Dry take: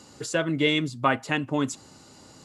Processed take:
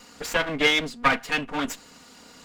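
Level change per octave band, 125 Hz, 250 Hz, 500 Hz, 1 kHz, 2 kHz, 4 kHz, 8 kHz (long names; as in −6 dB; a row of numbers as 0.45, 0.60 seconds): −7.5, −4.0, −0.5, +2.0, +5.0, +4.0, +0.5 decibels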